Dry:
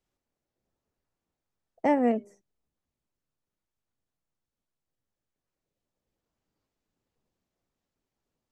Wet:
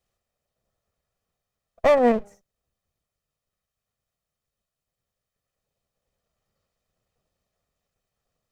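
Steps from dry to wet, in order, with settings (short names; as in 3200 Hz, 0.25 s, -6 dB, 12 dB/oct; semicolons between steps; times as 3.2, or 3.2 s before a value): minimum comb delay 1.6 ms; gain +6 dB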